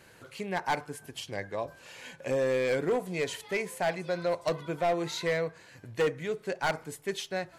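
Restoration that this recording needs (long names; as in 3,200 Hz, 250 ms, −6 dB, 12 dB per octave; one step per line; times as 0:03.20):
clipped peaks rebuilt −22 dBFS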